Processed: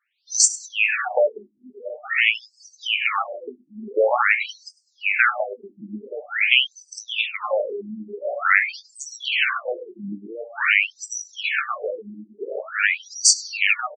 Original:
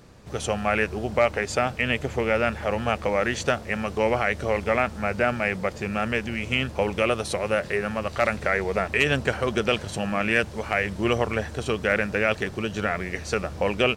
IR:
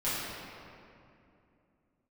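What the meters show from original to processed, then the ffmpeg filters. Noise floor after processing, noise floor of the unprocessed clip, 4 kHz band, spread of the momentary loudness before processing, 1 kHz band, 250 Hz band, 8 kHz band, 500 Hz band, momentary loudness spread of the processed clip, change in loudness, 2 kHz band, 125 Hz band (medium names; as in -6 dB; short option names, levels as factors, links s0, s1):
-63 dBFS, -39 dBFS, +7.5 dB, 5 LU, -0.5 dB, -10.5 dB, +16.5 dB, -3.0 dB, 18 LU, +4.0 dB, +5.0 dB, under -15 dB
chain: -filter_complex "[0:a]aderivative,bandreject=f=1000:w=19,asplit=2[s0][s1];[1:a]atrim=start_sample=2205,lowpass=6800[s2];[s1][s2]afir=irnorm=-1:irlink=0,volume=0.2[s3];[s0][s3]amix=inputs=2:normalize=0,acompressor=threshold=0.00794:ratio=4,afftdn=nr=35:nf=-52,highshelf=f=9900:g=3,asplit=2[s4][s5];[s5]adelay=20,volume=0.335[s6];[s4][s6]amix=inputs=2:normalize=0,aecho=1:1:100|200|300:0.0708|0.0319|0.0143,alimiter=level_in=39.8:limit=0.891:release=50:level=0:latency=1,afftfilt=real='re*between(b*sr/1024,240*pow(6300/240,0.5+0.5*sin(2*PI*0.47*pts/sr))/1.41,240*pow(6300/240,0.5+0.5*sin(2*PI*0.47*pts/sr))*1.41)':imag='im*between(b*sr/1024,240*pow(6300/240,0.5+0.5*sin(2*PI*0.47*pts/sr))/1.41,240*pow(6300/240,0.5+0.5*sin(2*PI*0.47*pts/sr))*1.41)':win_size=1024:overlap=0.75"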